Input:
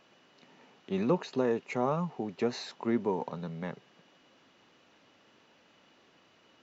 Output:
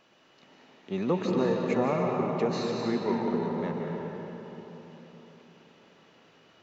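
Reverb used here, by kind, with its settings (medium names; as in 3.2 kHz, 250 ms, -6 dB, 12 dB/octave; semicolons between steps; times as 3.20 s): algorithmic reverb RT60 4.1 s, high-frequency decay 0.55×, pre-delay 110 ms, DRR -1.5 dB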